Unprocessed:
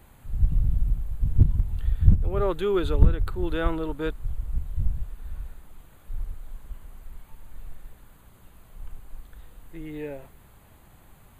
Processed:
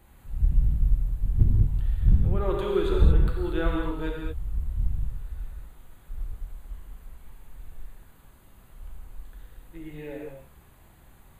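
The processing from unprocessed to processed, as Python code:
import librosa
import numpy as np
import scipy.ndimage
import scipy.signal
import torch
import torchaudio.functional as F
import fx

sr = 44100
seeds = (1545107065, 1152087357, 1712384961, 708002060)

y = fx.rev_gated(x, sr, seeds[0], gate_ms=250, shape='flat', drr_db=-1.5)
y = y * 10.0 ** (-5.0 / 20.0)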